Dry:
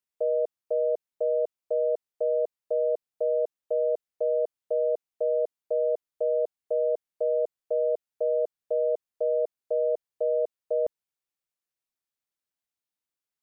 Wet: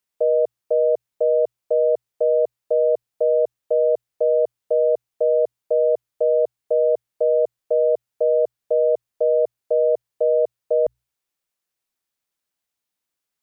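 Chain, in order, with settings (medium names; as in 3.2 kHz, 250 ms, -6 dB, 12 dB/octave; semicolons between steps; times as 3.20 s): hum notches 60/120 Hz; trim +7.5 dB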